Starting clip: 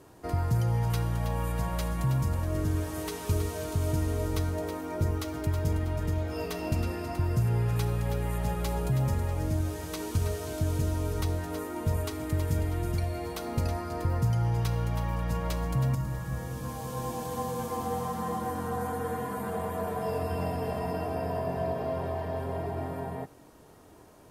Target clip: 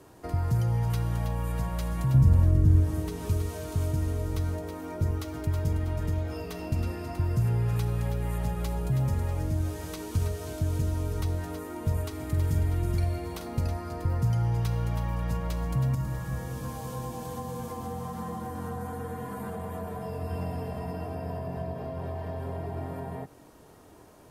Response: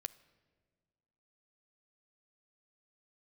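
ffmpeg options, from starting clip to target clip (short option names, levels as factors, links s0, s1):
-filter_complex "[0:a]asettb=1/sr,asplit=3[s0][s1][s2];[s0]atrim=end=2.144[s3];[s1]atrim=start=2.14:end=3.29,asetpts=PTS-STARTPTS,afade=t=in:d=0.004:c=qsin,afade=t=out:st=1.146:d=0.004:c=qsin,lowshelf=f=470:g=9.5[s4];[s2]atrim=start=3.286[s5];[s3][s4]acrossfade=d=0.004:c1=hsin:c2=qsin[s6];[s6][s5]acrossfade=d=0.004:c1=qsin:c2=hsin,acrossover=split=220[s7][s8];[s8]acompressor=threshold=0.0141:ratio=6[s9];[s7][s9]amix=inputs=2:normalize=0,asettb=1/sr,asplit=3[s10][s11][s12];[s10]atrim=end=12.164[s13];[s11]atrim=start=12.16:end=13.47,asetpts=PTS-STARTPTS,afade=t=in:d=0.004:c=qsin,afade=t=out:st=1.306:d=0.004:c=qsin,asplit=2[s14][s15];[s15]adelay=46,volume=0.376[s16];[s14][s16]amix=inputs=2:normalize=0,atrim=end_sample=57771[s17];[s12]atrim=start=13.466[s18];[s13][s17]acrossfade=d=0.004:c1=hsin:c2=qsin[s19];[s19][s18]acrossfade=d=0.004:c1=qsin:c2=hsin,volume=1.12"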